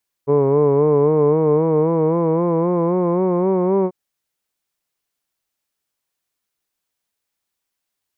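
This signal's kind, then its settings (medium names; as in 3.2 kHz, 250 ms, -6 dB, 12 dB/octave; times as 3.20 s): formant-synthesis vowel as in hood, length 3.64 s, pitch 139 Hz, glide +5.5 st, vibrato 3.8 Hz, vibrato depth 0.7 st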